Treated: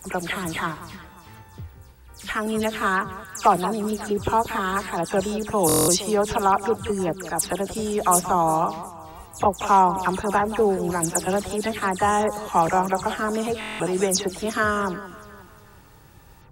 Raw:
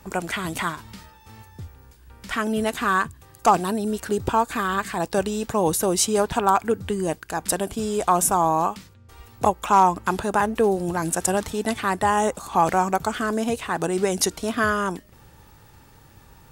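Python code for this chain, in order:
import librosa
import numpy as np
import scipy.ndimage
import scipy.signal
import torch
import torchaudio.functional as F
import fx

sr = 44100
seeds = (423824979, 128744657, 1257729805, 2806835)

y = fx.spec_delay(x, sr, highs='early', ms=101)
y = fx.echo_alternate(y, sr, ms=179, hz=1300.0, feedback_pct=59, wet_db=-12.5)
y = fx.buffer_glitch(y, sr, at_s=(5.67, 13.59), block=1024, repeats=8)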